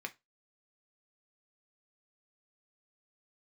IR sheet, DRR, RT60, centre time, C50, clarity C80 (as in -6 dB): 5.0 dB, 0.20 s, 5 ms, 20.5 dB, 30.5 dB